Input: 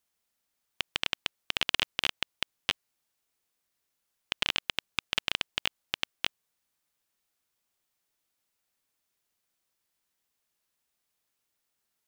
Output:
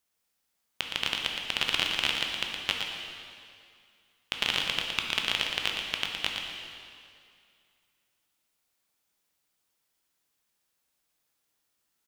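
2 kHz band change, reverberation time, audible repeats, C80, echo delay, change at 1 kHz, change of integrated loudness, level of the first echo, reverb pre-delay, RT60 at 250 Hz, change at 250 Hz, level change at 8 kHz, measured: +3.0 dB, 2.3 s, 1, 2.0 dB, 0.116 s, +3.0 dB, +2.5 dB, -7.0 dB, 6 ms, 2.2 s, +3.5 dB, +3.0 dB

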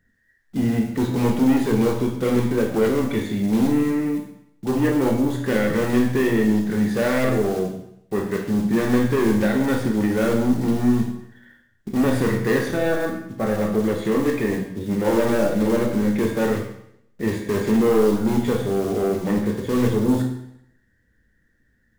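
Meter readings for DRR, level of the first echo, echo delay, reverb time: 1.5 dB, none, none, 0.75 s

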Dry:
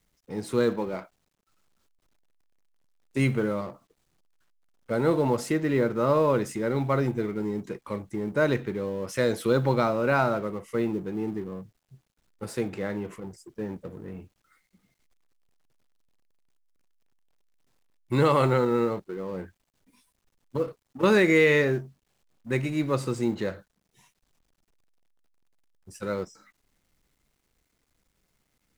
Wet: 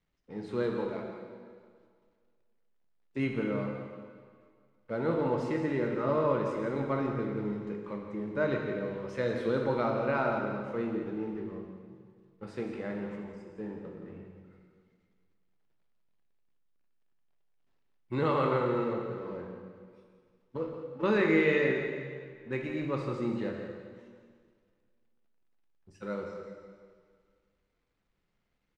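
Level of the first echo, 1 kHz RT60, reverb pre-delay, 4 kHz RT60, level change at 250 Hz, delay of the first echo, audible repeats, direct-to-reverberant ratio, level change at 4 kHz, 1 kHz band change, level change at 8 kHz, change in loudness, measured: -10.0 dB, 1.9 s, 7 ms, 1.8 s, -5.0 dB, 0.171 s, 1, 1.0 dB, -9.0 dB, -5.0 dB, under -15 dB, -5.5 dB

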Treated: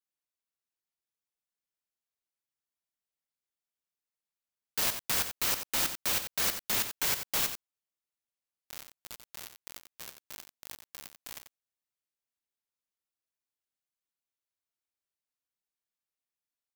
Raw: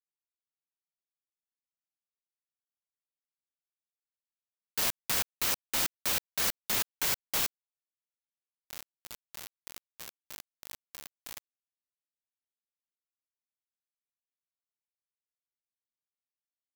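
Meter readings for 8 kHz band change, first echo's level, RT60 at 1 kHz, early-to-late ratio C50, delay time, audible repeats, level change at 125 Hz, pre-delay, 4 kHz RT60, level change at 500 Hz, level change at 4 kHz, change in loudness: +0.5 dB, -9.5 dB, none, none, 90 ms, 1, +0.5 dB, none, none, +0.5 dB, +0.5 dB, +0.5 dB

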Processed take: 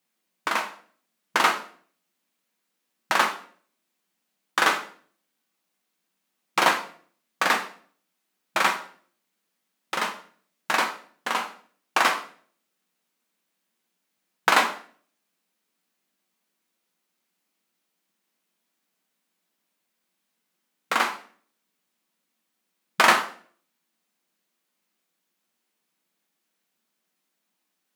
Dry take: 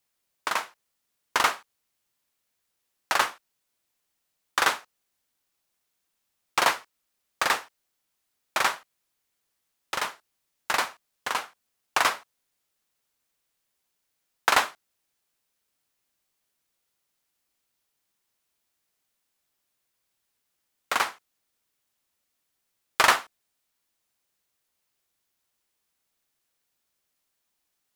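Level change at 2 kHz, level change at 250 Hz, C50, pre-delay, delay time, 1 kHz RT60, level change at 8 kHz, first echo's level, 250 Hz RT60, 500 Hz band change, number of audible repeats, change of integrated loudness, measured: +3.0 dB, +7.5 dB, 11.0 dB, 5 ms, none, 0.45 s, -0.5 dB, none, 0.65 s, +3.5 dB, none, +2.0 dB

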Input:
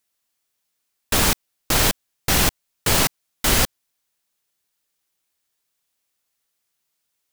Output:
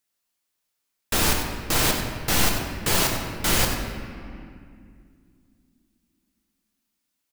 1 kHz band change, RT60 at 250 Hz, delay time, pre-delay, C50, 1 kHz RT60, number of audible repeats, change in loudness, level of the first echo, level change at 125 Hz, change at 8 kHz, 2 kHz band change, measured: -2.0 dB, 3.6 s, 95 ms, 6 ms, 3.5 dB, 2.2 s, 1, -3.0 dB, -11.0 dB, -2.0 dB, -3.0 dB, -2.0 dB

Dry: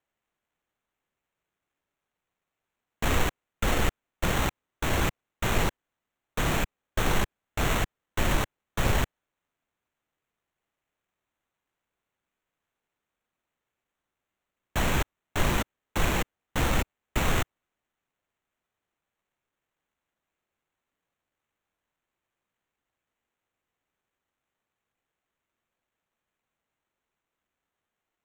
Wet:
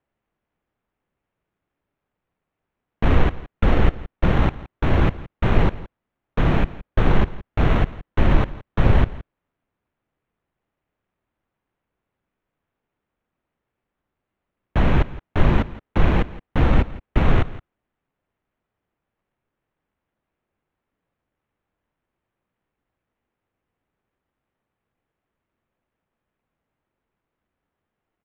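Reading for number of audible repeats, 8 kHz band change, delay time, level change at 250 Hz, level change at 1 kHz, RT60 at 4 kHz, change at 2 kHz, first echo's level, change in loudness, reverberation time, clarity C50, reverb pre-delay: 1, under -15 dB, 0.168 s, +9.0 dB, +4.0 dB, none, +1.0 dB, -18.0 dB, +7.0 dB, none, none, none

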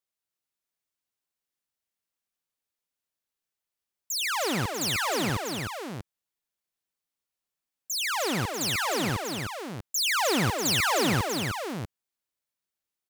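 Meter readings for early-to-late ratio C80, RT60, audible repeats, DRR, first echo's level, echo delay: none, none, 3, none, -14.0 dB, 0.223 s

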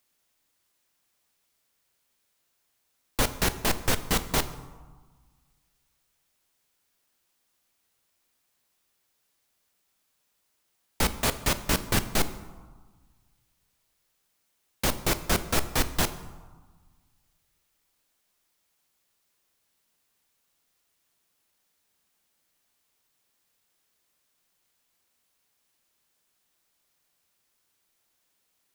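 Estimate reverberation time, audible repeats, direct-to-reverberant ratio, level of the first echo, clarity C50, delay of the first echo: 1.4 s, none, 11.0 dB, none, 13.5 dB, none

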